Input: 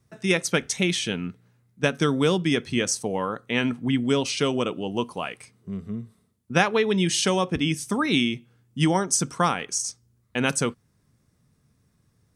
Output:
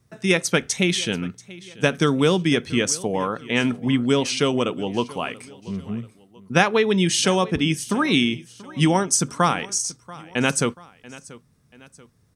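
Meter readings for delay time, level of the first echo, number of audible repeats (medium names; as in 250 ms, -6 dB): 685 ms, -20.0 dB, 2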